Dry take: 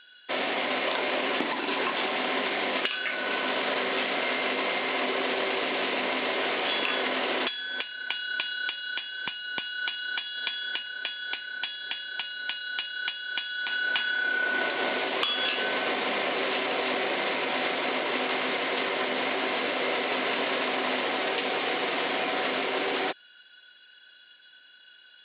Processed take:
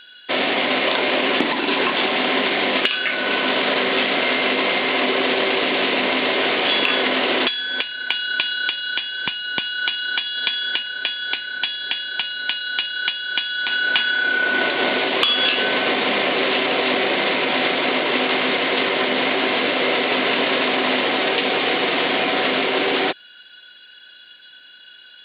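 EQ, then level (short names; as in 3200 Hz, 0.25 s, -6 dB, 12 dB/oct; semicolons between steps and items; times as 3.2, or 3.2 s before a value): low shelf 490 Hz +9 dB; high shelf 2100 Hz +9.5 dB; +3.5 dB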